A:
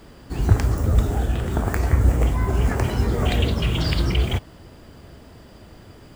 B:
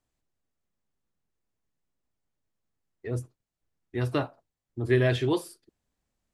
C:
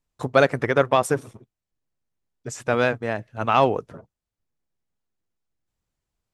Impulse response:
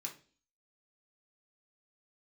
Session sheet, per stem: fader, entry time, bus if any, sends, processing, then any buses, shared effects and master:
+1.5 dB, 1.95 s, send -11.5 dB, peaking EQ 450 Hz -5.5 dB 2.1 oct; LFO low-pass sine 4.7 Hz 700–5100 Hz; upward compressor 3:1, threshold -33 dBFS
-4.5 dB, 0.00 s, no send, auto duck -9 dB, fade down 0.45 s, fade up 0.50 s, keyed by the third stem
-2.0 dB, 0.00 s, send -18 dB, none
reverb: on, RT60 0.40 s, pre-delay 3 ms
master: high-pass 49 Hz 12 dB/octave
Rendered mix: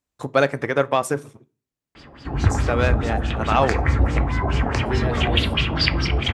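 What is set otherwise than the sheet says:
stem A: missing upward compressor 3:1, threshold -33 dBFS; reverb return +9.0 dB

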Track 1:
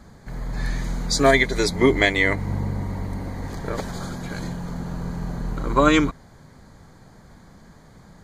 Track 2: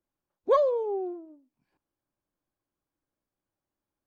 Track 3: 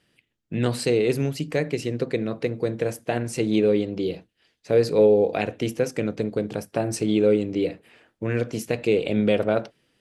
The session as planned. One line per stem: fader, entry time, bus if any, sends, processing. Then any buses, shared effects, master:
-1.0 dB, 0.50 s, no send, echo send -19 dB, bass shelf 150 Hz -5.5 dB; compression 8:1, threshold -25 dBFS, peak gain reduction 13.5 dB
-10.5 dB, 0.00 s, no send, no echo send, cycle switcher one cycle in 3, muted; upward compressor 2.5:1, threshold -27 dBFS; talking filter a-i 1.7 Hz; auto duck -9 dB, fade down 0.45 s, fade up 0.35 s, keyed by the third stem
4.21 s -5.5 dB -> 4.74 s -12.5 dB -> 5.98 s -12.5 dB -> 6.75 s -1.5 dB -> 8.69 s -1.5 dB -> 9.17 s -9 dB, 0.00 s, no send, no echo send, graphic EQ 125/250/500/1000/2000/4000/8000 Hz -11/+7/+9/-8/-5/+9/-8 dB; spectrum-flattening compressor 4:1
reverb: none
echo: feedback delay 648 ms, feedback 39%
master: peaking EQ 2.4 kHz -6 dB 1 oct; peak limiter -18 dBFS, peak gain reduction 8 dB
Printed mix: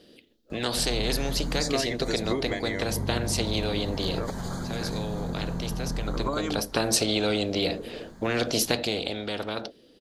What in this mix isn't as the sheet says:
stem 1: missing bass shelf 150 Hz -5.5 dB; master: missing peak limiter -18 dBFS, peak gain reduction 8 dB

